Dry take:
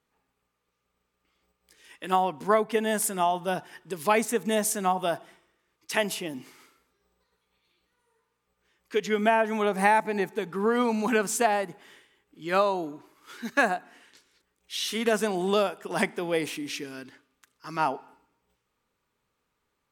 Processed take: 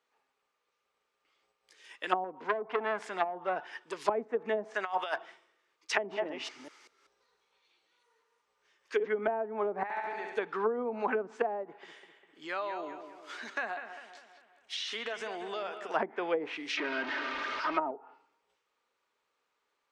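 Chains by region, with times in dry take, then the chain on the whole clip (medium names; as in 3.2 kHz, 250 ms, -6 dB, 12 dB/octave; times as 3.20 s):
2.24–4.08 s: high-pass 74 Hz + transformer saturation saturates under 2.2 kHz
4.74–5.16 s: tilt EQ +4.5 dB/octave + compressor with a negative ratio -31 dBFS, ratio -0.5
5.91–9.08 s: chunks repeated in reverse 193 ms, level -4 dB + peaking EQ 5.8 kHz +4.5 dB 0.39 oct
9.83–10.37 s: compression 10:1, threshold -35 dBFS + flutter echo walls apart 11.8 m, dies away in 1.4 s + three bands expanded up and down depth 70%
11.63–15.94 s: compression 4:1, threshold -34 dBFS + bucket-brigade echo 200 ms, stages 4096, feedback 51%, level -9 dB
16.77–17.91 s: jump at every zero crossing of -29 dBFS + distance through air 190 m + comb 3.2 ms, depth 54%
whole clip: three-band isolator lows -22 dB, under 360 Hz, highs -22 dB, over 7.9 kHz; low-pass that closes with the level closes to 400 Hz, closed at -23.5 dBFS; dynamic bell 1.7 kHz, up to +4 dB, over -48 dBFS, Q 0.87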